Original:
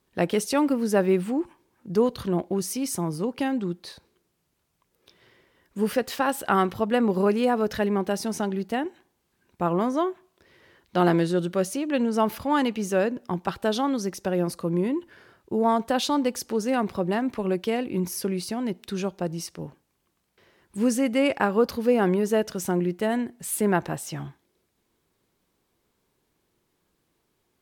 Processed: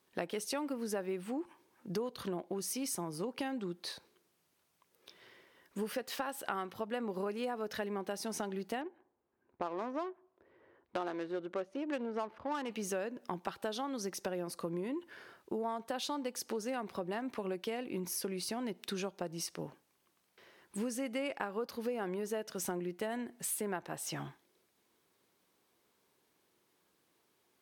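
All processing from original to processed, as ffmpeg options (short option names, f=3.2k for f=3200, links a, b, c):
-filter_complex "[0:a]asettb=1/sr,asplit=3[a][b][c];[a]atrim=end=8.814[d];[b]atrim=start=8.81:end=12.7,asetpts=PTS-STARTPTS,afade=t=in:d=0.004:c=qsin,afade=t=out:st=3.886:d=0.004:c=qsin,equalizer=f=170:w=2.3:g=-9.5,adynamicsmooth=sensitivity=2.5:basefreq=970[e];[c]atrim=start=12.696[f];[d][e]acrossfade=d=0.004:c1=hsin:c2=qsin[g];[g][f]acrossfade=d=0.004:c1=qsin:c2=hsin,highpass=f=360:p=1,bandreject=f=7.3k:w=25,acompressor=threshold=-35dB:ratio=6"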